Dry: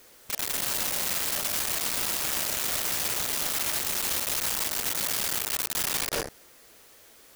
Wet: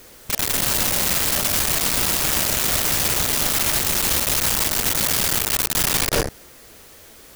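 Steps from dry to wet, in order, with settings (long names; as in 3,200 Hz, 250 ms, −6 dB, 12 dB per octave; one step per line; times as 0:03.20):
low-shelf EQ 220 Hz +10 dB
level +8 dB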